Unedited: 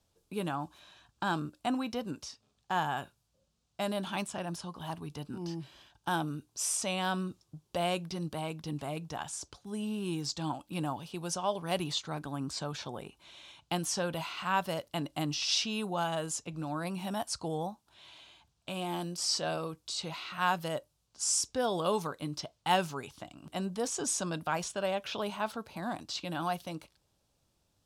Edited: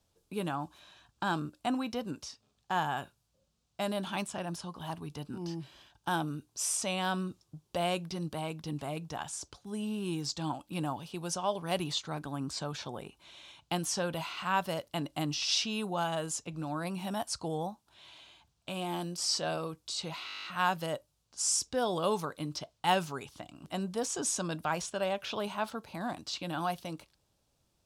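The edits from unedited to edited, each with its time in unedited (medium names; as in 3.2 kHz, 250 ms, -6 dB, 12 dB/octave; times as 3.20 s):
20.26 s: stutter 0.02 s, 10 plays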